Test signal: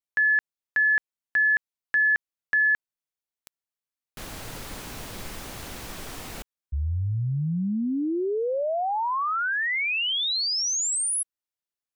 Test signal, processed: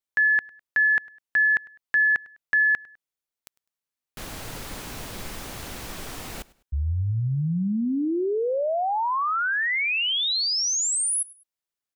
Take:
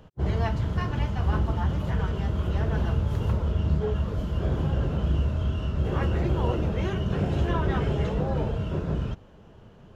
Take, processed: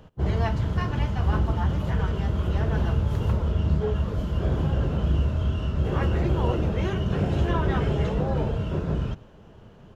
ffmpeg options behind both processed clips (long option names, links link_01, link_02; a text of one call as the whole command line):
ffmpeg -i in.wav -af "aecho=1:1:102|204:0.0794|0.0262,volume=1.5dB" out.wav